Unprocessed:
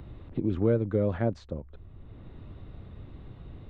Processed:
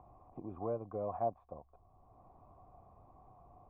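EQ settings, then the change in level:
formant resonators in series a
+8.5 dB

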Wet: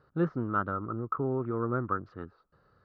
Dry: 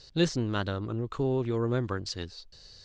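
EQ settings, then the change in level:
high-pass filter 160 Hz 12 dB per octave
low-pass with resonance 1,300 Hz, resonance Q 11
spectral tilt −3 dB per octave
−7.5 dB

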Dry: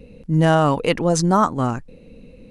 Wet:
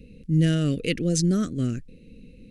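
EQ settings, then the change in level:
Butterworth band-reject 910 Hz, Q 0.52
−2.5 dB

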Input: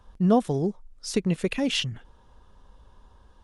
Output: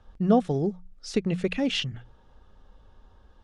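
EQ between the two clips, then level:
Butterworth band-reject 1,000 Hz, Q 8
high-frequency loss of the air 81 metres
mains-hum notches 60/120/180 Hz
0.0 dB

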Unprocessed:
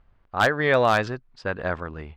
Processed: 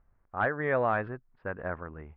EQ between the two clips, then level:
low-pass filter 2,000 Hz 24 dB per octave
−7.5 dB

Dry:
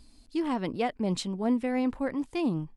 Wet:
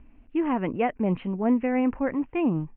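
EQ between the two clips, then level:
Butterworth low-pass 2,800 Hz 72 dB per octave
+4.0 dB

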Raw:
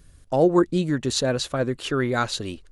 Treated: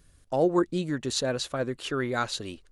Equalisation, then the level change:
low-shelf EQ 250 Hz −4.5 dB
−4.0 dB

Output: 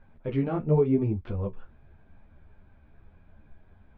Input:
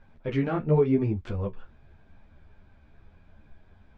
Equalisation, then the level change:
dynamic equaliser 1,700 Hz, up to −7 dB, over −52 dBFS, Q 1.9
high-frequency loss of the air 280 metres
0.0 dB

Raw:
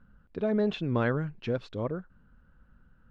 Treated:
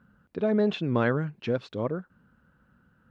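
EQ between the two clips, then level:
high-pass filter 110 Hz 12 dB per octave
+3.0 dB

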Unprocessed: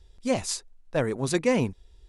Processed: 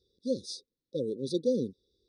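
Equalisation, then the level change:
Savitzky-Golay smoothing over 15 samples
high-pass filter 210 Hz 12 dB per octave
linear-phase brick-wall band-stop 560–3,400 Hz
−3.5 dB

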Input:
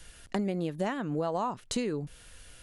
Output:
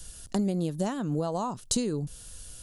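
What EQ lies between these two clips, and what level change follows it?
bass and treble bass +6 dB, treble +11 dB
parametric band 2,100 Hz −9 dB 0.84 octaves
0.0 dB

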